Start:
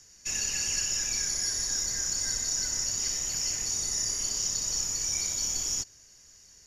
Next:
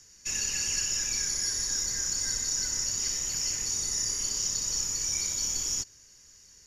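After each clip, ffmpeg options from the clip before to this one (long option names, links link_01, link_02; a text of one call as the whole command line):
ffmpeg -i in.wav -af "equalizer=frequency=690:width=6.5:gain=-9.5" out.wav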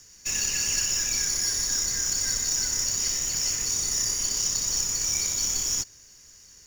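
ffmpeg -i in.wav -af "acrusher=bits=3:mode=log:mix=0:aa=0.000001,volume=3.5dB" out.wav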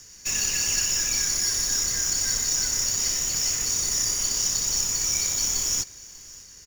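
ffmpeg -i in.wav -filter_complex "[0:a]asplit=2[link_01][link_02];[link_02]aeval=exprs='(mod(28.2*val(0)+1,2)-1)/28.2':channel_layout=same,volume=-8.5dB[link_03];[link_01][link_03]amix=inputs=2:normalize=0,aecho=1:1:594:0.0841,volume=1.5dB" out.wav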